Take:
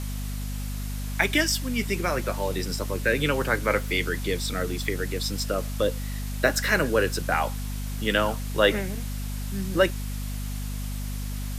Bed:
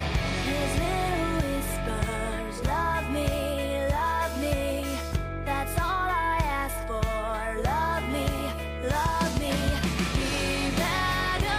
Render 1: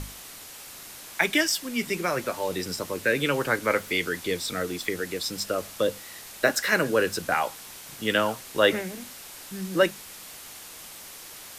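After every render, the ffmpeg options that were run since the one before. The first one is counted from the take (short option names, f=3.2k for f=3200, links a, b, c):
-af "bandreject=f=50:t=h:w=6,bandreject=f=100:t=h:w=6,bandreject=f=150:t=h:w=6,bandreject=f=200:t=h:w=6,bandreject=f=250:t=h:w=6"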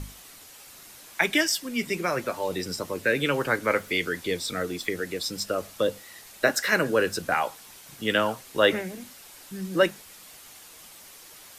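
-af "afftdn=nr=6:nf=-44"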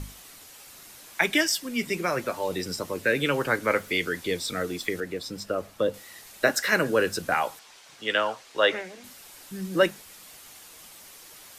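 -filter_complex "[0:a]asettb=1/sr,asplit=3[a][b][c];[a]atrim=end=5.004[d];[b]atrim=start=5:end=5.94,asetpts=PTS-STARTPTS,afade=t=in:d=0.004:c=qsin,afade=t=out:st=0.936:d=0.004:c=qsin,highshelf=f=2.8k:g=-9.5[e];[c]atrim=start=5.936[f];[d][e]acrossfade=d=0.004:c1=hsin:c2=qsin[g];[g][f]acrossfade=d=0.004:c1=qsin:c2=hsin,asettb=1/sr,asplit=3[h][i][j];[h]atrim=end=7.594[k];[i]atrim=start=7.59:end=9.04,asetpts=PTS-STARTPTS,afade=t=in:d=0.004:c=qsin,afade=t=out:st=1.446:d=0.004:c=qsin,acrossover=split=400 7400:gain=0.2 1 0.126[l][m][n];[l][m][n]amix=inputs=3:normalize=0[o];[j]atrim=start=9.036[p];[k][o]acrossfade=d=0.004:c1=hsin:c2=qsin[q];[q][p]acrossfade=d=0.004:c1=qsin:c2=hsin"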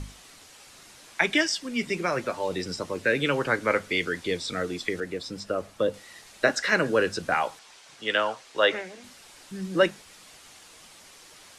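-filter_complex "[0:a]acrossover=split=7300[a][b];[b]acompressor=threshold=-53dB:ratio=4:attack=1:release=60[c];[a][c]amix=inputs=2:normalize=0,lowpass=f=11k:w=0.5412,lowpass=f=11k:w=1.3066"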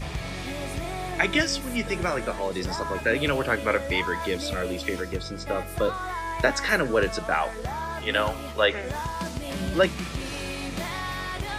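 -filter_complex "[1:a]volume=-5.5dB[a];[0:a][a]amix=inputs=2:normalize=0"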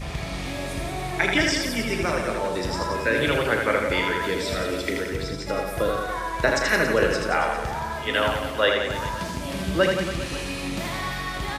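-filter_complex "[0:a]asplit=2[a][b];[b]adelay=36,volume=-11dB[c];[a][c]amix=inputs=2:normalize=0,asplit=2[d][e];[e]aecho=0:1:80|172|277.8|399.5|539.4:0.631|0.398|0.251|0.158|0.1[f];[d][f]amix=inputs=2:normalize=0"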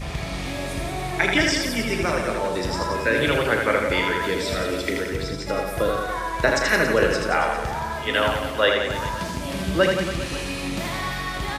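-af "volume=1.5dB"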